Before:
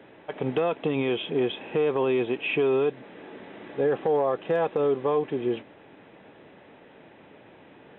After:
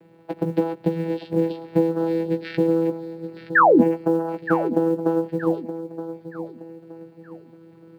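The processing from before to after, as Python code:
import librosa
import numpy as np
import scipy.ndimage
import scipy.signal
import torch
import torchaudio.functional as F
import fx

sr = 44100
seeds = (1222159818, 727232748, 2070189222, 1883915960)

p1 = fx.spec_quant(x, sr, step_db=15)
p2 = fx.transient(p1, sr, attack_db=8, sustain_db=-1)
p3 = fx.vocoder(p2, sr, bands=8, carrier='saw', carrier_hz=165.0)
p4 = fx.quant_companded(p3, sr, bits=8)
p5 = fx.spec_paint(p4, sr, seeds[0], shape='fall', start_s=3.55, length_s=0.27, low_hz=200.0, high_hz=1900.0, level_db=-14.0)
p6 = fx.doubler(p5, sr, ms=16.0, db=-6.5)
y = p6 + fx.echo_feedback(p6, sr, ms=921, feedback_pct=35, wet_db=-12, dry=0)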